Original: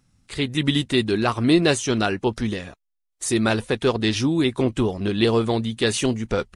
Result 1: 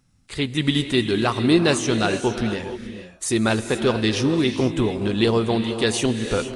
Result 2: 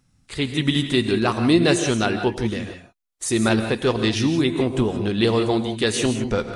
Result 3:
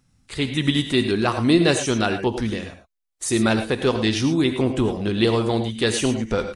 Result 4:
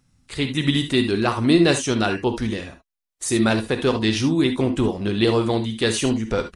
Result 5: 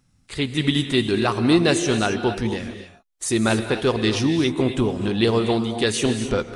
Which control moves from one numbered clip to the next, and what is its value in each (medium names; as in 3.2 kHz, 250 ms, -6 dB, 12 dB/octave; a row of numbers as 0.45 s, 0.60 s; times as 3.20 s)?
gated-style reverb, gate: 500 ms, 200 ms, 130 ms, 90 ms, 300 ms